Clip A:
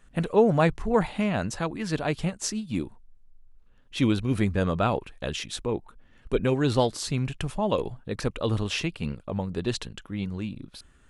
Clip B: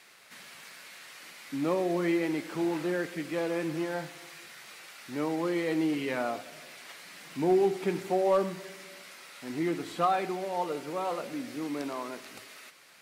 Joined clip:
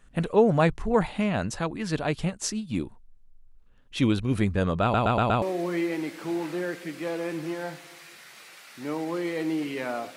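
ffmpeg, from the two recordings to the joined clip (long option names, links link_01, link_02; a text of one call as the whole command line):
ffmpeg -i cue0.wav -i cue1.wav -filter_complex "[0:a]apad=whole_dur=10.16,atrim=end=10.16,asplit=5[link_01][link_02][link_03][link_04][link_05];[link_01]atrim=end=4.942[link_06];[link_02]atrim=start=4.818:end=4.942[link_07];[link_03]atrim=start=4.818:end=4.942[link_08];[link_04]atrim=start=4.818:end=4.942[link_09];[link_05]atrim=start=4.818:end=4.942[link_10];[1:a]atrim=start=1.728:end=6.47[link_11];[link_06][link_07]acrossfade=duration=0.004:curve1=hsin:curve2=hsin[link_12];[link_12][link_08]acrossfade=duration=0.004:curve1=hsin:curve2=hsin[link_13];[link_13][link_09]acrossfade=duration=0.004:curve1=hsin:curve2=hsin[link_14];[link_14][link_10]acrossfade=duration=0.004:curve1=hsin:curve2=hsin[link_15];[link_15][link_11]acrossfade=duration=0.004:curve1=hsin:curve2=hsin" out.wav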